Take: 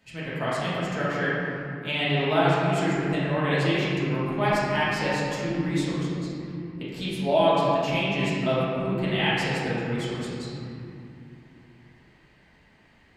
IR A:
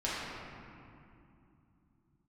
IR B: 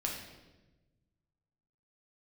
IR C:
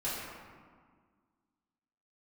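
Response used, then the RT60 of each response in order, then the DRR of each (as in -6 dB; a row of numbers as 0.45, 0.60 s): A; 2.7, 1.1, 1.7 s; -9.5, -1.5, -11.0 dB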